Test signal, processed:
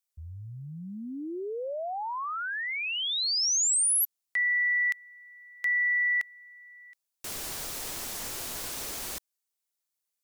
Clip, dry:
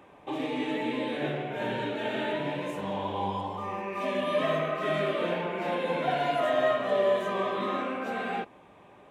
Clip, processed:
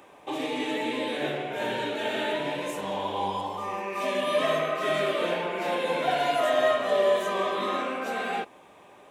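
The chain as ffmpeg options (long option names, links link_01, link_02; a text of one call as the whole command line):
ffmpeg -i in.wav -af "bass=frequency=250:gain=-8,treble=frequency=4000:gain=9,volume=2.5dB" out.wav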